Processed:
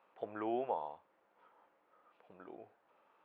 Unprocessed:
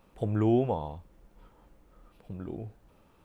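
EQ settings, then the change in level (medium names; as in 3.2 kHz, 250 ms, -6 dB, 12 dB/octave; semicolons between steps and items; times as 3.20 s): band-pass 690–2200 Hz; distance through air 61 m; -1.0 dB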